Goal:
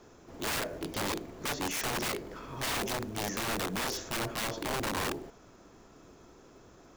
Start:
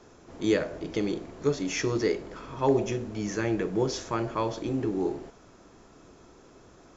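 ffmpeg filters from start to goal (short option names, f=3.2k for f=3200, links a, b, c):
-af "aeval=exprs='(mod(18.8*val(0)+1,2)-1)/18.8':c=same,acrusher=bits=6:mode=log:mix=0:aa=0.000001,volume=-2dB"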